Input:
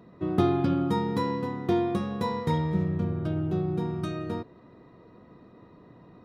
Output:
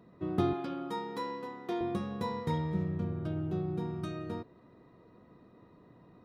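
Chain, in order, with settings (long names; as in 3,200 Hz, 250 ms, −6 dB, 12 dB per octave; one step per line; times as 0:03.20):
0:00.53–0:01.81: Bessel high-pass filter 430 Hz, order 2
level −6 dB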